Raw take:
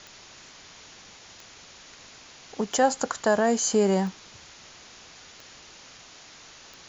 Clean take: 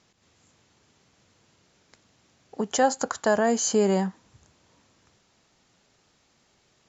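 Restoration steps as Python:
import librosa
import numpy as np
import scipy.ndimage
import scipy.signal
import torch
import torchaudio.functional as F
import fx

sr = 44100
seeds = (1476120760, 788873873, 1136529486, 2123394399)

y = fx.fix_declick_ar(x, sr, threshold=10.0)
y = fx.noise_reduce(y, sr, print_start_s=1.43, print_end_s=1.93, reduce_db=16.0)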